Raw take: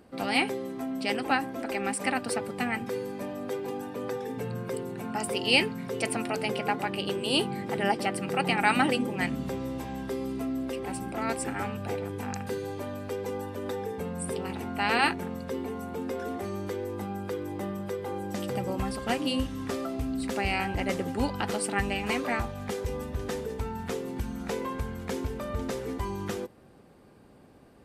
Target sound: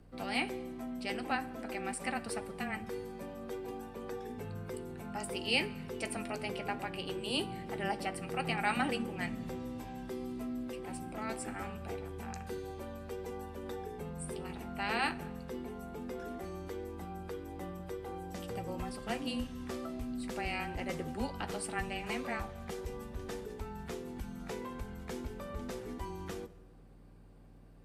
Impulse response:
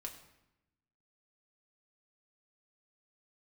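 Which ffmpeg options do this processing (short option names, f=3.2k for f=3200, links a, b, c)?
-filter_complex "[0:a]aeval=exprs='val(0)+0.00398*(sin(2*PI*60*n/s)+sin(2*PI*2*60*n/s)/2+sin(2*PI*3*60*n/s)/3+sin(2*PI*4*60*n/s)/4+sin(2*PI*5*60*n/s)/5)':c=same,afreqshift=-17,asplit=2[a][b];[1:a]atrim=start_sample=2205,asetrate=27342,aresample=44100,adelay=13[c];[b][c]afir=irnorm=-1:irlink=0,volume=-11.5dB[d];[a][d]amix=inputs=2:normalize=0,volume=-8.5dB"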